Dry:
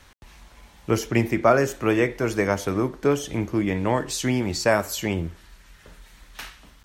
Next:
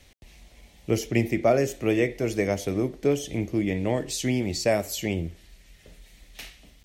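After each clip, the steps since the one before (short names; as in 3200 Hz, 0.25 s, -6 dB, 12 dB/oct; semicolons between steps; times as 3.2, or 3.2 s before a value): band shelf 1200 Hz -12 dB 1.1 oct; gain -2 dB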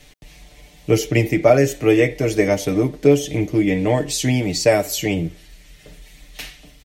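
comb 6.7 ms, depth 70%; gain +6 dB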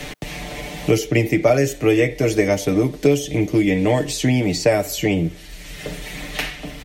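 three-band squash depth 70%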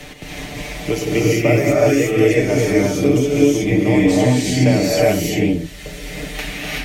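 non-linear reverb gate 0.4 s rising, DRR -5.5 dB; gain -4.5 dB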